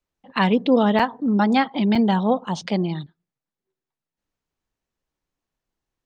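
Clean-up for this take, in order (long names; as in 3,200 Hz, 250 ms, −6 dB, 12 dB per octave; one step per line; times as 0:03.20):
repair the gap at 0:00.99/0:01.95, 5.3 ms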